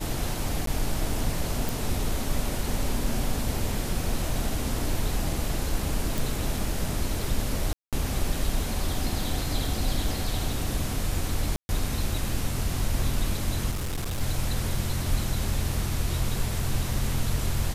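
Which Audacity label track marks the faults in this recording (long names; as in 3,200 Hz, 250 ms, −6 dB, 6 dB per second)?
0.660000	0.670000	drop-out 13 ms
1.690000	1.690000	click
6.180000	6.180000	click
7.730000	7.930000	drop-out 197 ms
11.560000	11.690000	drop-out 130 ms
13.700000	14.210000	clipping −26 dBFS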